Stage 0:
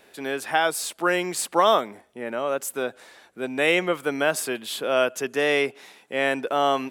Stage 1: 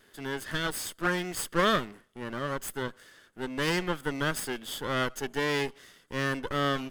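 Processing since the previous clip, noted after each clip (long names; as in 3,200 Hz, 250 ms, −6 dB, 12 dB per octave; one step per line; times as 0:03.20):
lower of the sound and its delayed copy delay 0.62 ms
level −4.5 dB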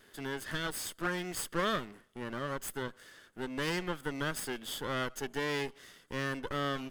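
downward compressor 1.5 to 1, threshold −40 dBFS, peak gain reduction 7.5 dB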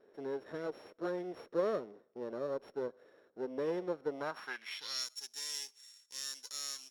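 samples sorted by size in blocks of 8 samples
band-pass filter sweep 490 Hz → 7,000 Hz, 0:04.09–0:05.08
level +5.5 dB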